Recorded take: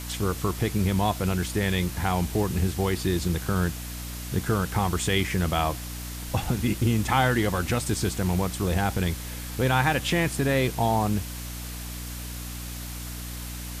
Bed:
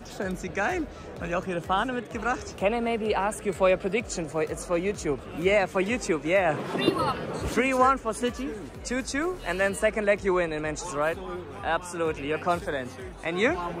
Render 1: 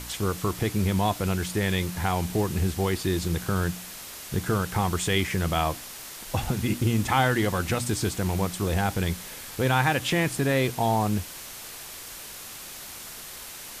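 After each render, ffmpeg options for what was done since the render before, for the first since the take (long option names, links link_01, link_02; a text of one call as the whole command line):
ffmpeg -i in.wav -af "bandreject=frequency=60:width_type=h:width=4,bandreject=frequency=120:width_type=h:width=4,bandreject=frequency=180:width_type=h:width=4,bandreject=frequency=240:width_type=h:width=4,bandreject=frequency=300:width_type=h:width=4" out.wav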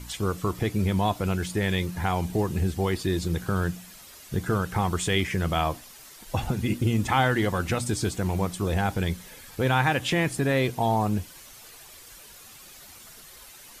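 ffmpeg -i in.wav -af "afftdn=noise_reduction=10:noise_floor=-41" out.wav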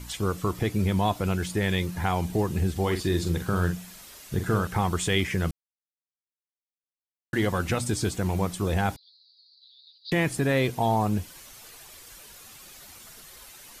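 ffmpeg -i in.wav -filter_complex "[0:a]asettb=1/sr,asplit=3[link_01][link_02][link_03];[link_01]atrim=end=2.714[link_04];[link_02]atrim=start=2.71:end=4.67,asetpts=PTS-STARTPTS,afade=type=in:duration=0.004:curve=qsin,afade=type=out:start_time=1.956:duration=0.004:curve=qsin,asplit=2[link_05][link_06];[link_06]adelay=45,volume=-8dB[link_07];[link_05][link_07]amix=inputs=2:normalize=0,atrim=end_sample=86436[link_08];[link_03]atrim=start=4.666[link_09];[link_04][link_08]acrossfade=duration=0.004:curve1=hsin:curve2=qsin[link_10];[link_10][link_09]acrossfade=duration=0.004:curve1=qsin:curve2=hsin,asettb=1/sr,asplit=3[link_11][link_12][link_13];[link_11]atrim=end=8.964[link_14];[link_12]atrim=start=8.96:end=10.12,asetpts=PTS-STARTPTS,afade=type=in:duration=0.004:curve=qsin,afade=type=out:start_time=1.156:duration=0.004:curve=qsin,asuperpass=centerf=4300:order=8:qfactor=4.5[link_15];[link_13]atrim=start=10.116[link_16];[link_14][link_15]acrossfade=duration=0.004:curve1=hsin:curve2=qsin[link_17];[link_17][link_16]acrossfade=duration=0.004:curve1=qsin:curve2=hsin,asplit=3[link_18][link_19][link_20];[link_18]atrim=end=5.51,asetpts=PTS-STARTPTS,afade=type=out:start_time=5.506:duration=0.004:curve=hsin[link_21];[link_19]atrim=start=5.51:end=7.33,asetpts=PTS-STARTPTS,volume=0[link_22];[link_20]atrim=start=7.33,asetpts=PTS-STARTPTS,afade=type=in:duration=0.004:curve=hsin[link_23];[link_21][link_22][link_23]concat=n=3:v=0:a=1" out.wav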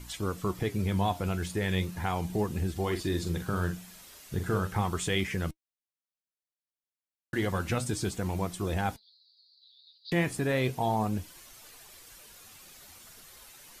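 ffmpeg -i in.wav -af "flanger=delay=2.8:depth=9.2:regen=74:speed=0.35:shape=sinusoidal" out.wav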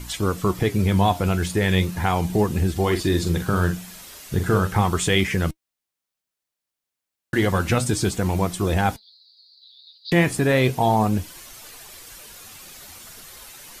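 ffmpeg -i in.wav -af "volume=9.5dB" out.wav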